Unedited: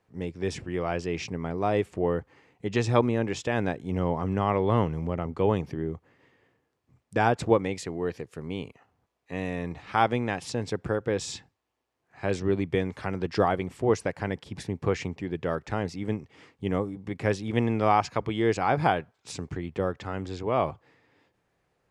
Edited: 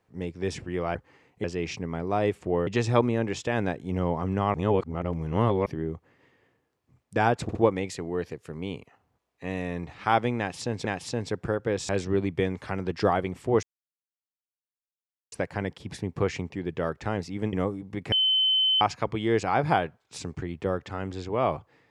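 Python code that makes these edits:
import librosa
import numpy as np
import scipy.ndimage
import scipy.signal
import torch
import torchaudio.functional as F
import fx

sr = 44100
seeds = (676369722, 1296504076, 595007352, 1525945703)

y = fx.edit(x, sr, fx.move(start_s=2.18, length_s=0.49, to_s=0.95),
    fx.reverse_span(start_s=4.54, length_s=1.12),
    fx.stutter(start_s=7.43, slice_s=0.06, count=3),
    fx.repeat(start_s=10.26, length_s=0.47, count=2),
    fx.cut(start_s=11.3, length_s=0.94),
    fx.insert_silence(at_s=13.98, length_s=1.69),
    fx.cut(start_s=16.19, length_s=0.48),
    fx.bleep(start_s=17.26, length_s=0.69, hz=3060.0, db=-19.5), tone=tone)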